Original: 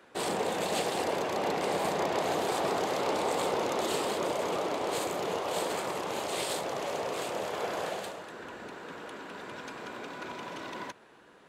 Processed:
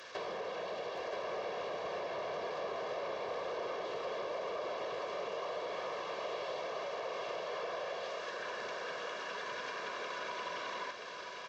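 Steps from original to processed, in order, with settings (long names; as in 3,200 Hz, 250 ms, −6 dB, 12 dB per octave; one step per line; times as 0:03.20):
linear delta modulator 32 kbit/s, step −47.5 dBFS
high-pass filter 660 Hz 6 dB per octave
comb filter 1.8 ms, depth 61%
downward compressor 6 to 1, threshold −42 dBFS, peak gain reduction 10.5 dB
single-tap delay 976 ms −6 dB
level +4 dB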